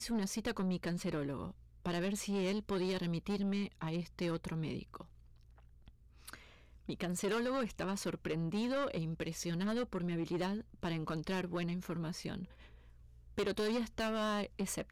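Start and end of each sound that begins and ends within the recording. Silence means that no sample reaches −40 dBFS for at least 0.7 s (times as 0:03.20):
0:06.28–0:12.44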